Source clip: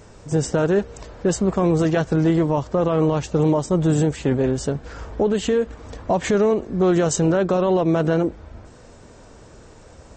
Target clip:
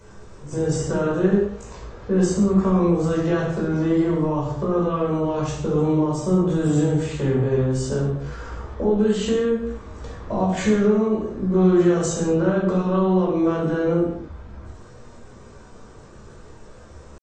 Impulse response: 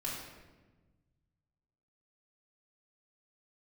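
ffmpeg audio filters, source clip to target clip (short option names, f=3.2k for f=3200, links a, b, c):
-filter_complex "[0:a]atempo=0.59,acrossover=split=270[a][b];[b]acompressor=threshold=-21dB:ratio=6[c];[a][c]amix=inputs=2:normalize=0,equalizer=f=1.2k:w=6.1:g=9.5[d];[1:a]atrim=start_sample=2205,afade=t=out:st=0.4:d=0.01,atrim=end_sample=18081,asetrate=61740,aresample=44100[e];[d][e]afir=irnorm=-1:irlink=0"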